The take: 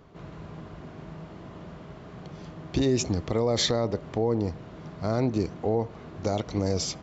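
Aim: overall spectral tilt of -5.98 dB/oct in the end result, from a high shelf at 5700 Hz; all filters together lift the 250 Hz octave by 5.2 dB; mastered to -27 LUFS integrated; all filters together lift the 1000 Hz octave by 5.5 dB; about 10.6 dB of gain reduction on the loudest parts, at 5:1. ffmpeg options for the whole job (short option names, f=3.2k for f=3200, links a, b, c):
-af "equalizer=f=250:t=o:g=6,equalizer=f=1k:t=o:g=7.5,highshelf=f=5.7k:g=-6,acompressor=threshold=-28dB:ratio=5,volume=8dB"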